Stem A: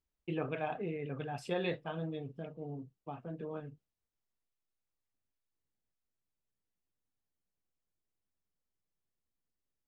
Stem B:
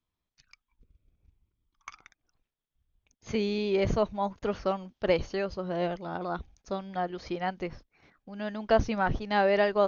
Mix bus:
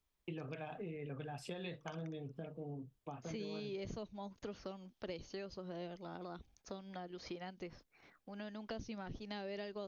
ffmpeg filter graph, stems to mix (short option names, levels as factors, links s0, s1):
-filter_complex "[0:a]acrossover=split=210|3000[s0][s1][s2];[s1]acompressor=threshold=0.01:ratio=6[s3];[s0][s3][s2]amix=inputs=3:normalize=0,volume=1.33[s4];[1:a]lowshelf=f=160:g=-11,acrossover=split=380|3000[s5][s6][s7];[s6]acompressor=threshold=0.00562:ratio=3[s8];[s5][s8][s7]amix=inputs=3:normalize=0,volume=0.75[s9];[s4][s9]amix=inputs=2:normalize=0,acompressor=threshold=0.00562:ratio=2.5"